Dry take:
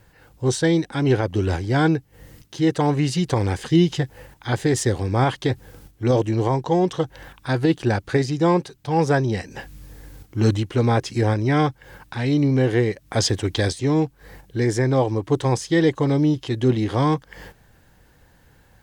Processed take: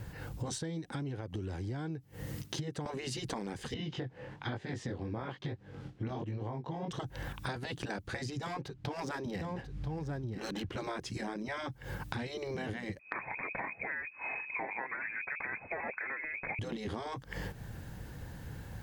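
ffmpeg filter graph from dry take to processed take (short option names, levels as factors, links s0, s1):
-filter_complex "[0:a]asettb=1/sr,asplit=3[s0][s1][s2];[s0]atrim=end=0.584[s3];[s1]atrim=start=0.58:end=2.86,asetpts=PTS-STARTPTS,afade=t=in:d=0.004:c=qsin,afade=t=out:st=2.276:d=0.004:c=qsin,highpass=f=140:p=1,acompressor=threshold=0.02:ratio=2:attack=3.2:release=140:knee=1:detection=peak[s4];[s2]atrim=start=2.856[s5];[s3][s4]acrossfade=d=0.004:c1=hsin:c2=qsin[s6];[s6][s5]acrossfade=d=0.004:c1=qsin:c2=hsin,asettb=1/sr,asplit=3[s7][s8][s9];[s7]atrim=end=3.744[s10];[s8]atrim=start=3.74:end=6.91,asetpts=PTS-STARTPTS,afade=t=in:d=0.004:c=qsin,afade=t=out:st=3.166:d=0.004:c=qsin,highpass=140,lowpass=3500,flanger=delay=19:depth=5.3:speed=1.1[s11];[s9]atrim=start=6.906[s12];[s10][s11]acrossfade=d=0.004:c1=hsin:c2=qsin[s13];[s13][s12]acrossfade=d=0.004:c1=qsin:c2=hsin,asettb=1/sr,asplit=3[s14][s15][s16];[s14]atrim=end=8.424[s17];[s15]atrim=start=8.42:end=10.77,asetpts=PTS-STARTPTS,afade=t=in:d=0.004:c=qsin,afade=t=out:st=2.346:d=0.004:c=qsin,adynamicsmooth=sensitivity=8:basefreq=3500,aecho=1:1:989:0.376,atrim=end_sample=103635[s18];[s16]atrim=start=10.766[s19];[s17][s18]acrossfade=d=0.004:c1=hsin:c2=qsin[s20];[s20][s19]acrossfade=d=0.004:c1=qsin:c2=hsin,asettb=1/sr,asplit=3[s21][s22][s23];[s21]atrim=end=12.994[s24];[s22]atrim=start=12.99:end=16.59,asetpts=PTS-STARTPTS,afade=t=in:d=0.004:c=qsin,afade=t=out:st=3.596:d=0.004:c=qsin,acontrast=33,lowpass=f=2200:t=q:w=0.5098,lowpass=f=2200:t=q:w=0.6013,lowpass=f=2200:t=q:w=0.9,lowpass=f=2200:t=q:w=2.563,afreqshift=-2600[s25];[s23]atrim=start=16.586[s26];[s24][s25]acrossfade=d=0.004:c1=hsin:c2=qsin[s27];[s27][s26]acrossfade=d=0.004:c1=qsin:c2=hsin,afftfilt=real='re*lt(hypot(re,im),0.398)':imag='im*lt(hypot(re,im),0.398)':win_size=1024:overlap=0.75,equalizer=f=120:t=o:w=2.5:g=9,acompressor=threshold=0.0112:ratio=16,volume=1.58"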